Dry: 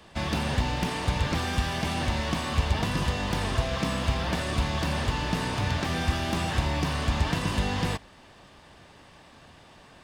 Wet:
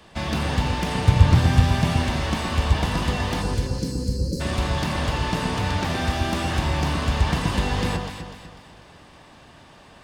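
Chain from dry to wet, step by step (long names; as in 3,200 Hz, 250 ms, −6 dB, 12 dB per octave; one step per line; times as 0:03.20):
0:00.97–0:01.91: parametric band 110 Hz +13 dB 1.2 octaves
0:03.42–0:04.41: time-frequency box erased 580–4,000 Hz
delay that swaps between a low-pass and a high-pass 124 ms, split 1,500 Hz, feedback 63%, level −3 dB
level +2 dB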